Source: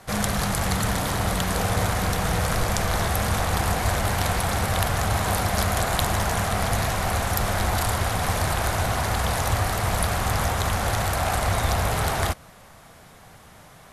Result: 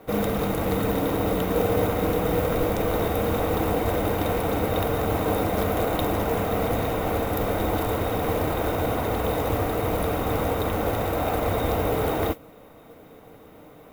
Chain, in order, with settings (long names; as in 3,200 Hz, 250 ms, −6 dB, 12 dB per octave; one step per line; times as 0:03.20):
hollow resonant body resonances 310/450/3,700 Hz, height 18 dB, ringing for 45 ms
noise that follows the level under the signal 14 dB
flat-topped bell 6,000 Hz −11 dB
notch filter 1,700 Hz, Q 9.3
level −5.5 dB